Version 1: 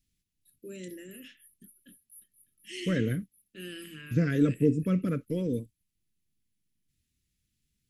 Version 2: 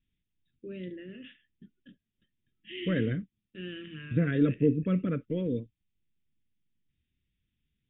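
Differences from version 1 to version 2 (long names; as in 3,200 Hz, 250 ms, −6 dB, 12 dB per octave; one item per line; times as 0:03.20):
first voice: remove high-pass filter 260 Hz 6 dB per octave
master: add Chebyshev low-pass filter 3,700 Hz, order 10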